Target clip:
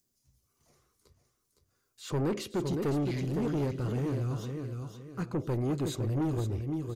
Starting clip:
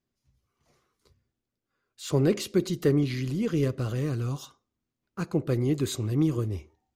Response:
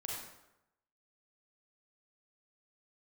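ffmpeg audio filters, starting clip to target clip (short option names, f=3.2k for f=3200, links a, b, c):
-filter_complex "[0:a]aecho=1:1:512|1024|1536|2048:0.398|0.123|0.0383|0.0119,acrossover=split=5800[a][b];[a]asoftclip=type=tanh:threshold=-26dB[c];[b]acompressor=mode=upward:threshold=-53dB:ratio=2.5[d];[c][d]amix=inputs=2:normalize=0,highshelf=f=2.6k:g=-8"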